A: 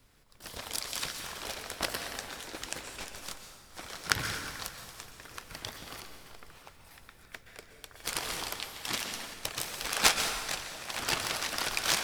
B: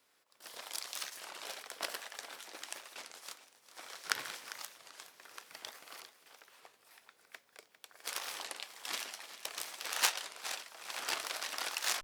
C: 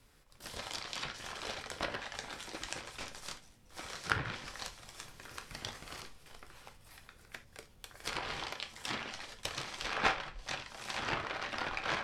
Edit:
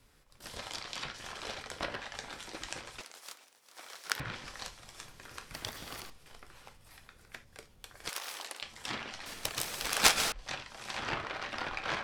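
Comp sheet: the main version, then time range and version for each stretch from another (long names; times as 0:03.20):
C
0:03.01–0:04.20: punch in from B
0:05.54–0:06.10: punch in from A
0:08.09–0:08.62: punch in from B
0:09.26–0:10.32: punch in from A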